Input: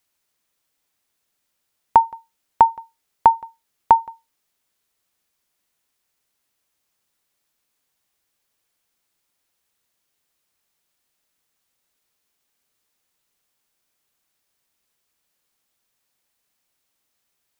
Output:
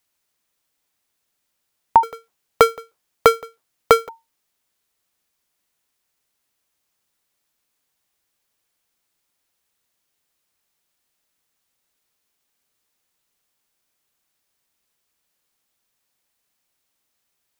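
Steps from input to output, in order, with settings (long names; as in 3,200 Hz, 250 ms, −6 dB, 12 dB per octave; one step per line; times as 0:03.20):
0:02.03–0:04.09: sub-harmonics by changed cycles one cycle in 2, inverted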